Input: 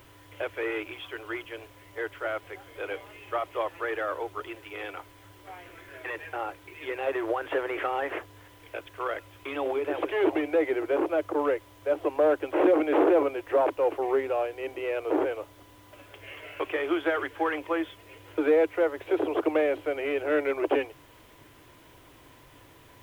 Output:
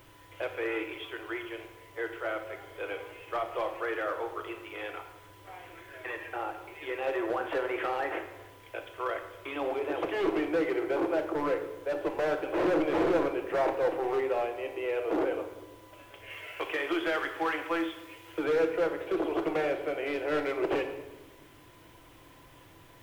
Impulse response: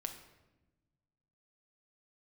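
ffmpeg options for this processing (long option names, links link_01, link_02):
-filter_complex "[0:a]asettb=1/sr,asplit=3[link_01][link_02][link_03];[link_01]atrim=end=16.304[link_04];[link_02]atrim=start=16.3:end=18.44,asetpts=PTS-STARTPTS,afade=type=in:duration=0.004:curve=qsin,afade=type=out:start_time=2.136:duration=0.004:curve=qsin,tiltshelf=frequency=970:gain=-4[link_05];[link_03]atrim=start=18.436[link_06];[link_04][link_05]acrossfade=duration=0.004:curve1=hsin:curve2=qsin[link_07];[link_07][link_06]acrossfade=duration=0.004:curve1=qsin:curve2=hsin,asoftclip=type=hard:threshold=-22.5dB[link_08];[1:a]atrim=start_sample=2205[link_09];[link_08][link_09]afir=irnorm=-1:irlink=0"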